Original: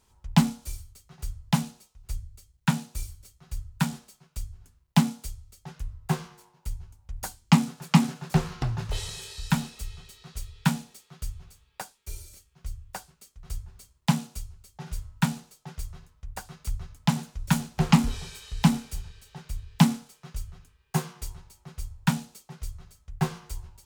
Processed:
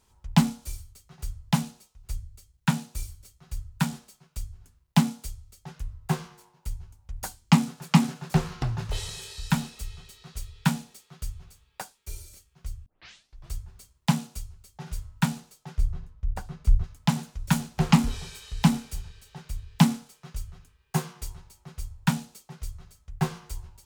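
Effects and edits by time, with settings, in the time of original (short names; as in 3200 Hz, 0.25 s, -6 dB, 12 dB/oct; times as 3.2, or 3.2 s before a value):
12.86 tape start 0.67 s
15.78–16.84 tilt -2.5 dB/oct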